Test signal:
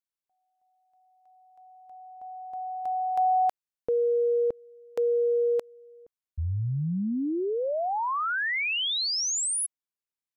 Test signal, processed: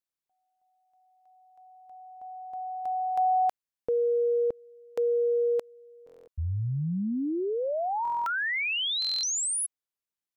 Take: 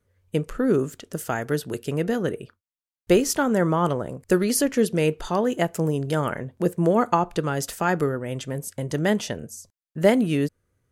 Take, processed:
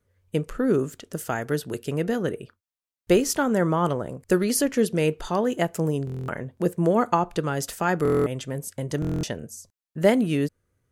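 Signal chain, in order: buffer glitch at 6.05/8.03/9.00 s, samples 1024, times 9; trim -1 dB

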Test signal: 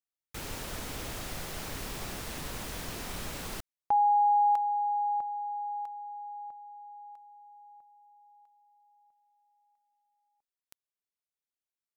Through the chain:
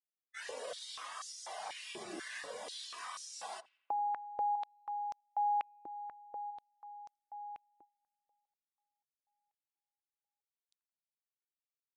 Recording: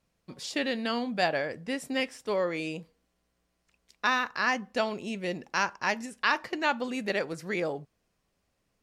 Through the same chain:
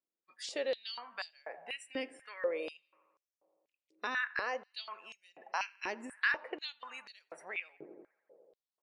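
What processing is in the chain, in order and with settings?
spectral noise reduction 23 dB; compression 2:1, threshold -41 dBFS; on a send: filtered feedback delay 85 ms, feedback 83%, low-pass 2.2 kHz, level -20.5 dB; on the sum: resampled via 22.05 kHz; step-sequenced high-pass 4.1 Hz 330–5800 Hz; trim -2.5 dB

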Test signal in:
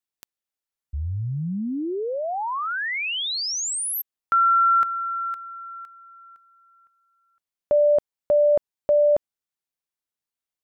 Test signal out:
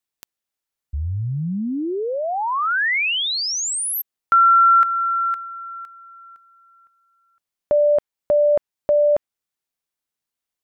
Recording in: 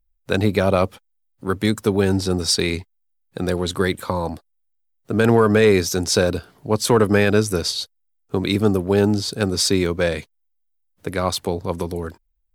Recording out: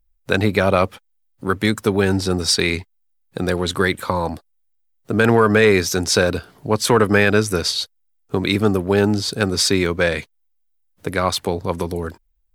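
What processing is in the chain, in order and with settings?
dynamic bell 1.8 kHz, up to +6 dB, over -34 dBFS, Q 0.75; in parallel at -1 dB: compression, threshold -27 dBFS; on the sum: trim -1.5 dB

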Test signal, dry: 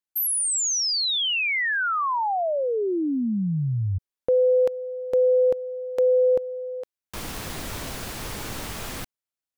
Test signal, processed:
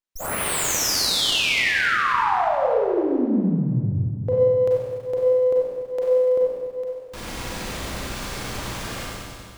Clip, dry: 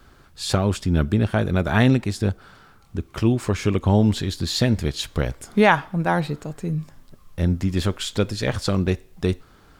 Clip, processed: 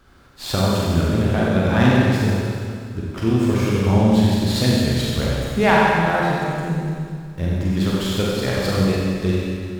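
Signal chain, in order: two-band feedback delay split 360 Hz, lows 208 ms, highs 91 ms, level -10 dB; Schroeder reverb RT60 2.1 s, combs from 32 ms, DRR -5 dB; sliding maximum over 3 samples; trim -3 dB

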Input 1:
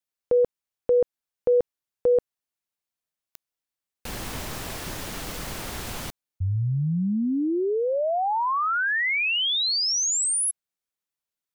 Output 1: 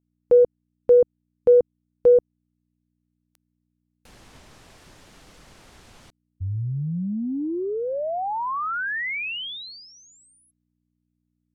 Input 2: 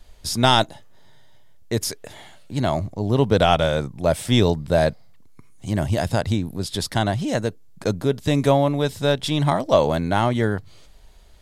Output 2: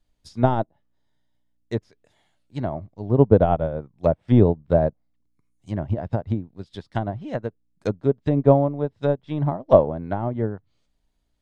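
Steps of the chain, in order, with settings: low-pass that closes with the level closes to 740 Hz, closed at -16 dBFS; mains buzz 60 Hz, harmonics 5, -59 dBFS -1 dB/octave; upward expansion 2.5:1, over -33 dBFS; trim +6.5 dB

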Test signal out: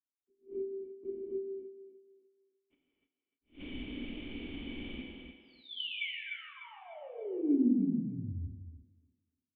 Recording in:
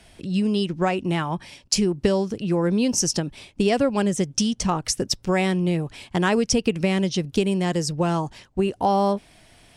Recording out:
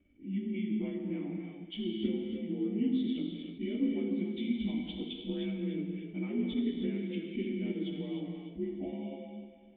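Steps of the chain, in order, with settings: frequency axis rescaled in octaves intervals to 86%; level-controlled noise filter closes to 1.5 kHz, open at -20.5 dBFS; peaking EQ 130 Hz -14.5 dB 0.74 oct; compression, threshold -22 dBFS; transient shaper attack +2 dB, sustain -4 dB; cascade formant filter i; thinning echo 299 ms, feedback 34%, high-pass 250 Hz, level -10 dB; gated-style reverb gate 350 ms flat, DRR 0.5 dB; attacks held to a fixed rise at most 250 dB/s

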